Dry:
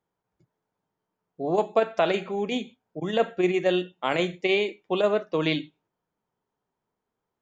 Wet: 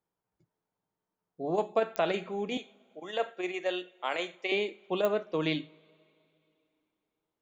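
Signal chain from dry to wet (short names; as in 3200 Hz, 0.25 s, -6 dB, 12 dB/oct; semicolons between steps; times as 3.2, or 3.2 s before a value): 2.57–4.52 HPF 510 Hz 12 dB/oct; two-slope reverb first 0.26 s, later 3 s, from -17 dB, DRR 19.5 dB; pops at 1.96/5.05, -11 dBFS; gain -5.5 dB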